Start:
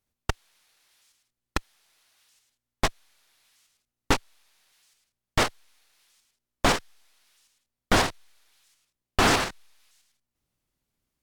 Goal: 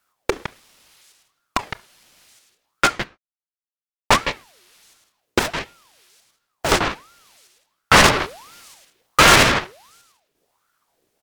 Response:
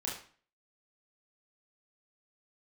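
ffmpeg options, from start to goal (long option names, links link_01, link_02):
-filter_complex "[0:a]asettb=1/sr,asplit=3[link_01][link_02][link_03];[link_01]atrim=end=8.044[link_04];[link_02]atrim=start=8.04:end=9.43,asetpts=PTS-STARTPTS,afade=type=in:duration=0.004:curve=qsin,afade=type=out:start_time=1.386:duration=0.004:curve=qsin,aeval=exprs='0.398*(cos(1*acos(clip(val(0)/0.398,-1,1)))-cos(1*PI/2))+0.112*(cos(5*acos(clip(val(0)/0.398,-1,1)))-cos(5*PI/2))+0.0794*(cos(8*acos(clip(val(0)/0.398,-1,1)))-cos(8*PI/2))':channel_layout=same[link_05];[link_03]atrim=start=9.426[link_06];[link_04][link_05]acrossfade=duration=0.004:curve1=hsin:curve2=qsin[link_07];[link_07][link_06]acrossfade=duration=0.004:curve1=qsin:curve2=hsin,asplit=2[link_08][link_09];[link_09]adelay=160,highpass=300,lowpass=3400,asoftclip=type=hard:threshold=-14.5dB,volume=-10dB[link_10];[link_08][link_10]amix=inputs=2:normalize=0,asettb=1/sr,asplit=3[link_11][link_12][link_13];[link_11]atrim=end=2.854[link_14];[link_12]atrim=start=2.85:end=4.14,asetpts=PTS-STARTPTS,afade=type=in:duration=0.004:curve=qsin,afade=type=out:start_time=1.286:duration=0.004:curve=qsin,aeval=exprs='sgn(val(0))*max(abs(val(0))-0.00282,0)':channel_layout=same[link_15];[link_13]atrim=start=4.136[link_16];[link_14][link_15]acrossfade=duration=0.004:curve1=hsin:curve2=qsin[link_17];[link_17][link_16]acrossfade=duration=0.004:curve1=qsin:curve2=hsin,asettb=1/sr,asplit=3[link_18][link_19][link_20];[link_18]atrim=end=5.394[link_21];[link_19]atrim=start=5.39:end=6.72,asetpts=PTS-STARTPTS,afade=type=in:duration=0.004:curve=qsin,afade=type=out:start_time=1.326:duration=0.004:curve=qsin,aeval=exprs='(tanh(39.8*val(0)+0.5)-tanh(0.5))/39.8':channel_layout=same[link_22];[link_20]atrim=start=6.716[link_23];[link_21][link_22]acrossfade=duration=0.004:curve1=hsin:curve2=qsin[link_24];[link_24][link_23]acrossfade=duration=0.004:curve1=qsin:curve2=hsin,asplit=2[link_25][link_26];[1:a]atrim=start_sample=2205,atrim=end_sample=6174[link_27];[link_26][link_27]afir=irnorm=-1:irlink=0,volume=-19dB[link_28];[link_25][link_28]amix=inputs=2:normalize=0,alimiter=level_in=13.5dB:limit=-1dB:release=50:level=0:latency=1,aeval=exprs='val(0)*sin(2*PI*880*n/s+880*0.6/1.4*sin(2*PI*1.4*n/s))':channel_layout=same"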